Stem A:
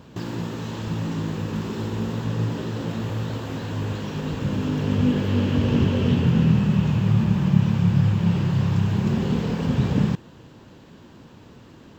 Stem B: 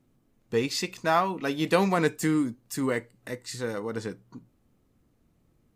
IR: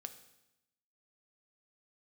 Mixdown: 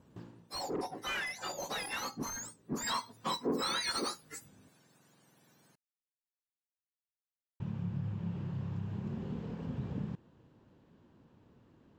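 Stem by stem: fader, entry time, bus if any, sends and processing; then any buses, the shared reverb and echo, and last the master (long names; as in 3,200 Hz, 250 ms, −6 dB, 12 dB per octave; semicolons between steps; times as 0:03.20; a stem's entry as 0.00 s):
−16.0 dB, 0.00 s, muted 0:04.69–0:07.60, no send, high-shelf EQ 2,200 Hz −10.5 dB; automatic ducking −21 dB, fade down 0.30 s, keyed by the second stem
0:02.59 −17 dB → 0:03.13 −5 dB, 0.00 s, no send, frequency axis turned over on the octave scale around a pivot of 1,400 Hz; mid-hump overdrive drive 27 dB, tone 2,000 Hz, clips at −7.5 dBFS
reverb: not used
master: downward compressor 2 to 1, threshold −34 dBFS, peak gain reduction 7 dB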